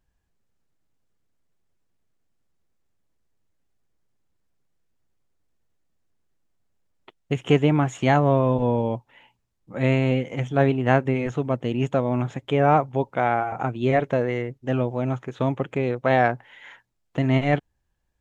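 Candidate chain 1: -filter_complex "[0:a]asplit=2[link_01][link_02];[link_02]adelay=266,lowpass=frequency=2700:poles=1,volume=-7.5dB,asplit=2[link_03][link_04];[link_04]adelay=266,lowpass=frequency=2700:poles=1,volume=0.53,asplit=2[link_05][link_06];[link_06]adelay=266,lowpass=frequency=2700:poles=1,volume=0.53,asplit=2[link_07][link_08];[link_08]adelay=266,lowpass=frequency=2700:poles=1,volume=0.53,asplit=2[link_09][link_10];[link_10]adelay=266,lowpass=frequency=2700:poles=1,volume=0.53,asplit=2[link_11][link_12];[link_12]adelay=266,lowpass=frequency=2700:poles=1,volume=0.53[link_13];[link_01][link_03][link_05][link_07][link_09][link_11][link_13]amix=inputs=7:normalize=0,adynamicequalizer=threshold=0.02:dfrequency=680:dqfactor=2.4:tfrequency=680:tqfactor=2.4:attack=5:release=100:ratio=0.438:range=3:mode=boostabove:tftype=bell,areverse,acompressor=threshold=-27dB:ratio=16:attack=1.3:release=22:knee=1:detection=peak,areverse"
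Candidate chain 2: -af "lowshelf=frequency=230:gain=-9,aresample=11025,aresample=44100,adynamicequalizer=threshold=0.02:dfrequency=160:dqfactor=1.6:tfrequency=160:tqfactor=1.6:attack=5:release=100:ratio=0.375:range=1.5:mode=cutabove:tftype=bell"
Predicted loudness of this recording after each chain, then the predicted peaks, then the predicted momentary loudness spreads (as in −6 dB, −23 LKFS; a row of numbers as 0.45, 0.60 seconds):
−31.5, −25.5 LKFS; −20.5, −4.5 dBFS; 3, 10 LU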